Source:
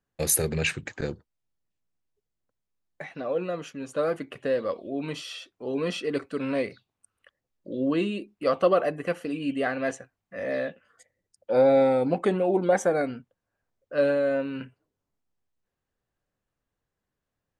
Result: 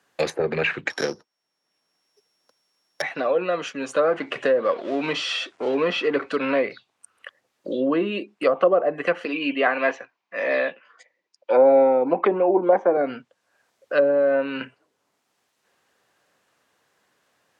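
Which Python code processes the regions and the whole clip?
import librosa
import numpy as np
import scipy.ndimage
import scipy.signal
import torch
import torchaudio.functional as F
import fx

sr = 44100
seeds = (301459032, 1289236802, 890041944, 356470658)

y = fx.chain(x, sr, fx.sample_sort(block=8),
    fx.bessel_highpass(hz=150.0, order=2),
    fx.peak_eq(hz=5700.0, db=5.5, octaves=0.23), at=(0.9, 3.02))
y = fx.chain(y, sr, fx.law_mismatch(coded='mu'),
    fx.lowpass(hz=9200.0, slope=24), at=(4.04, 6.37))
y = fx.chain(y, sr, fx.cabinet(low_hz=190.0, low_slope=12, high_hz=5800.0, hz=(330.0, 990.0, 2400.0), db=(4, 9, 6)),
    fx.band_widen(depth_pct=40), at=(9.25, 12.97))
y = fx.env_lowpass_down(y, sr, base_hz=710.0, full_db=-19.0)
y = fx.weighting(y, sr, curve='A')
y = fx.band_squash(y, sr, depth_pct=40)
y = F.gain(torch.from_numpy(y), 9.0).numpy()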